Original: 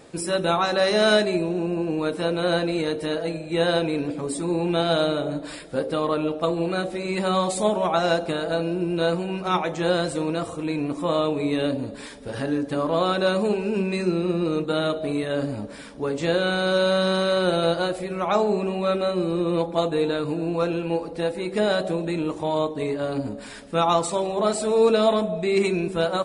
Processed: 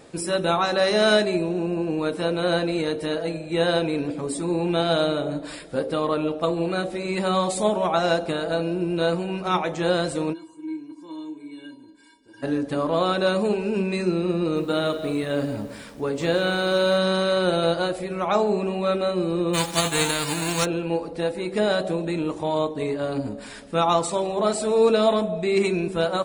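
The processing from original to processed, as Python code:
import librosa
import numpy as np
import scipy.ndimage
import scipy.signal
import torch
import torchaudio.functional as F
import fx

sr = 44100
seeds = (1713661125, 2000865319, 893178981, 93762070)

y = fx.comb_fb(x, sr, f0_hz=320.0, decay_s=0.17, harmonics='odd', damping=0.0, mix_pct=100, at=(10.32, 12.42), fade=0.02)
y = fx.echo_crushed(y, sr, ms=174, feedback_pct=35, bits=7, wet_db=-13.0, at=(14.39, 16.98))
y = fx.envelope_flatten(y, sr, power=0.3, at=(19.53, 20.64), fade=0.02)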